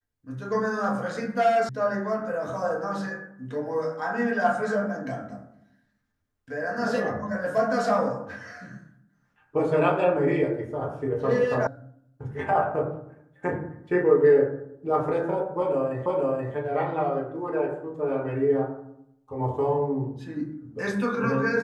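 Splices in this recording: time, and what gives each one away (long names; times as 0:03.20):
0:01.69: cut off before it has died away
0:11.67: cut off before it has died away
0:16.06: the same again, the last 0.48 s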